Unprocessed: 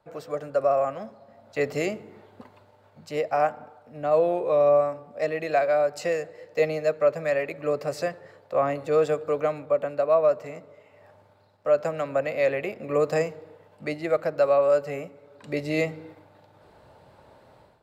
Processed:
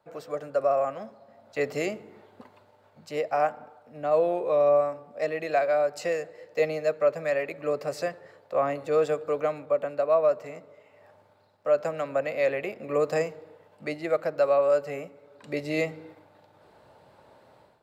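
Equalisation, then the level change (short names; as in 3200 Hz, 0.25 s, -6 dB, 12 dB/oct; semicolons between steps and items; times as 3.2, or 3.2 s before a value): low shelf 89 Hz -11.5 dB; -1.5 dB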